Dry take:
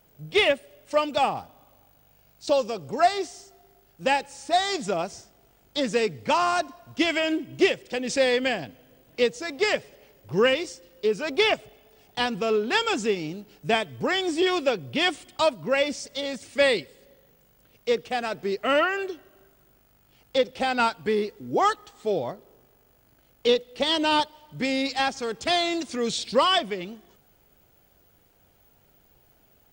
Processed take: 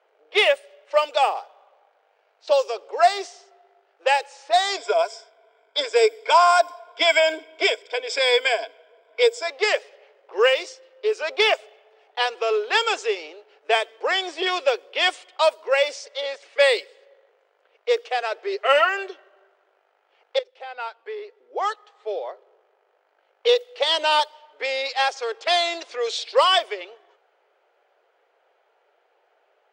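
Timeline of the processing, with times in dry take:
4.77–9.48 s: rippled EQ curve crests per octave 1.7, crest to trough 14 dB
18.46–18.89 s: comb 7.4 ms, depth 56%
20.39–23.52 s: fade in, from -18 dB
whole clip: steep high-pass 420 Hz 48 dB/octave; level-controlled noise filter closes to 2.2 kHz, open at -18 dBFS; trim +3.5 dB

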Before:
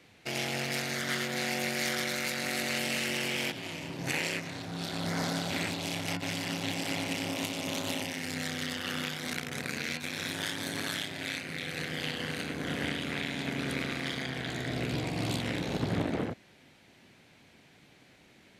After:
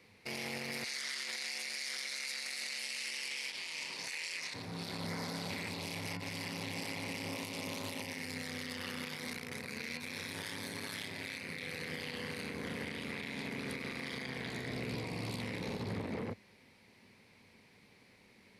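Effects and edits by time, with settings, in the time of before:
0.84–4.54 s: frequency weighting ITU-R 468
whole clip: rippled EQ curve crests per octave 0.89, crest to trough 7 dB; peak limiter -25.5 dBFS; trim -4.5 dB

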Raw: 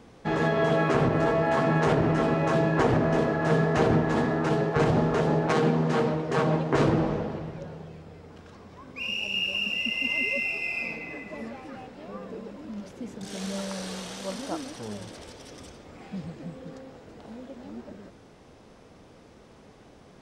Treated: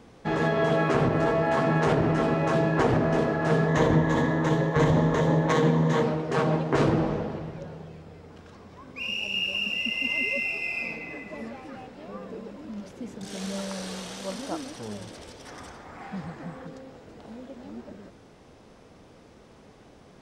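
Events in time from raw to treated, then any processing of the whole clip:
3.68–6.03 s: rippled EQ curve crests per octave 1.1, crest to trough 9 dB
15.45–16.67 s: high-order bell 1.2 kHz +9 dB

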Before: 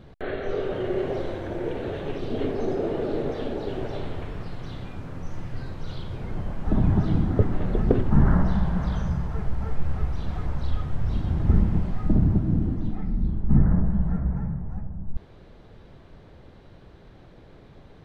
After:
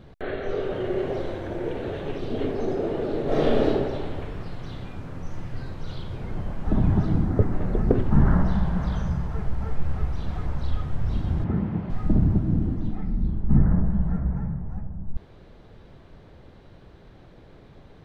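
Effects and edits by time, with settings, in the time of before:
3.24–3.66 s: reverb throw, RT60 1.4 s, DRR -9 dB
7.06–7.98 s: peaking EQ 3.3 kHz -7 dB 0.75 oct
11.44–11.90 s: band-pass 130–2900 Hz

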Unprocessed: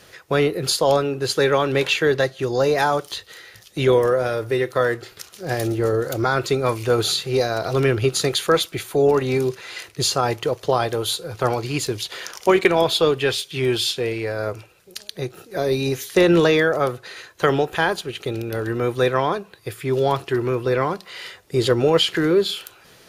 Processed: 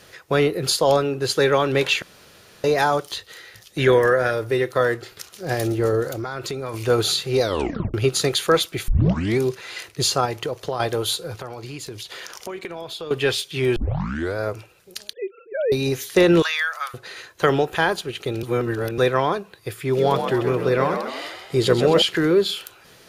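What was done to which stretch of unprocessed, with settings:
2.02–2.64 s: room tone
3.78–4.31 s: peaking EQ 1.7 kHz +12.5 dB 0.45 oct
6.08–6.74 s: compression, threshold -25 dBFS
7.42 s: tape stop 0.52 s
8.88 s: tape start 0.50 s
10.25–10.80 s: compression 3:1, threshold -23 dBFS
11.35–13.11 s: compression 4:1, threshold -32 dBFS
13.76 s: tape start 0.61 s
15.13–15.72 s: formants replaced by sine waves
16.42–16.94 s: high-pass 1.2 kHz 24 dB/octave
18.43–18.98 s: reverse
19.82–22.02 s: frequency-shifting echo 130 ms, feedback 52%, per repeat +50 Hz, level -7 dB

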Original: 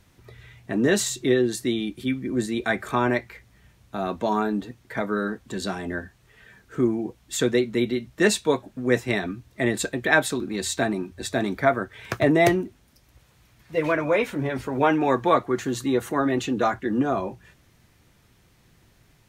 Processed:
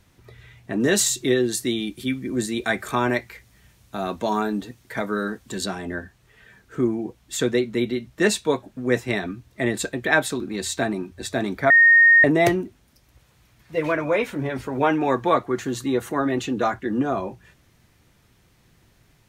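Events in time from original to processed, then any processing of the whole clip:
0.80–5.66 s: treble shelf 3.8 kHz +8 dB
11.70–12.24 s: bleep 1.85 kHz -9.5 dBFS

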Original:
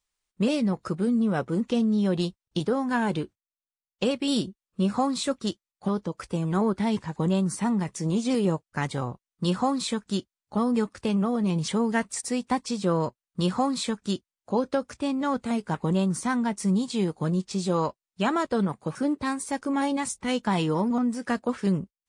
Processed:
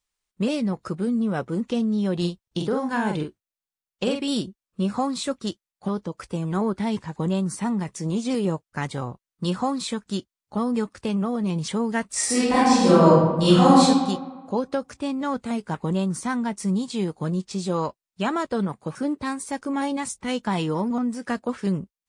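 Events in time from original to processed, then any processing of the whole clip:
2.17–4.22 s: doubling 46 ms -4.5 dB
12.08–13.81 s: reverb throw, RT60 1.3 s, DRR -11.5 dB

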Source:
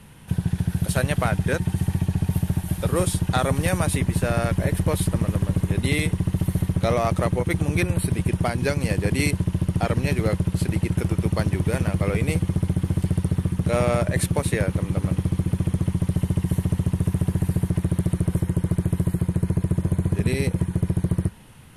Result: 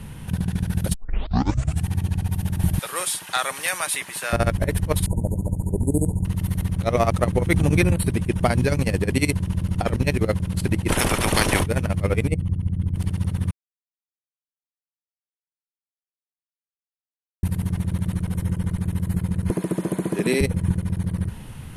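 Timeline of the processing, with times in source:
0.94 s: tape start 0.92 s
2.79–4.33 s: high-pass 1.2 kHz
5.06–6.25 s: brick-wall FIR band-stop 1–6.5 kHz
7.52–7.92 s: compressor with a negative ratio -22 dBFS, ratio -0.5
10.88–11.62 s: spectral peaks clipped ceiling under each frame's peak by 28 dB
12.28–12.96 s: resonances exaggerated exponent 1.5
13.51–17.43 s: mute
19.50–20.41 s: high-pass 240 Hz 24 dB/octave
whole clip: bass shelf 180 Hz +9 dB; compressor with a negative ratio -20 dBFS, ratio -0.5

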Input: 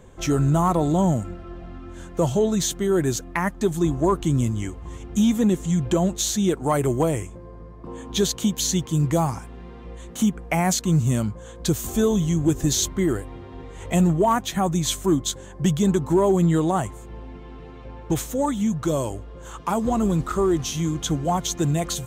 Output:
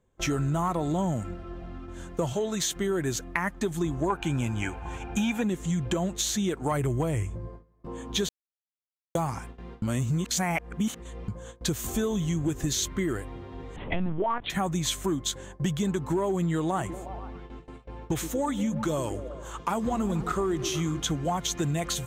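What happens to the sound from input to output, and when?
2.33–2.76 s: bass shelf 250 Hz -10 dB
4.10–5.43 s: small resonant body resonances 830/1500/2400 Hz, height 17 dB, ringing for 20 ms
6.71–7.48 s: peaking EQ 85 Hz +13 dB 1.5 oct
8.29–9.15 s: mute
9.82–11.28 s: reverse
12.66–13.14 s: peaking EQ 770 Hz -7 dB 0.35 oct
13.76–14.50 s: LPC vocoder at 8 kHz pitch kept
16.65–21.00 s: repeats whose band climbs or falls 120 ms, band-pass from 250 Hz, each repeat 0.7 oct, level -8.5 dB
whole clip: gate with hold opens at -30 dBFS; dynamic bell 2 kHz, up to +6 dB, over -42 dBFS, Q 0.82; compression 4:1, threshold -23 dBFS; trim -2 dB

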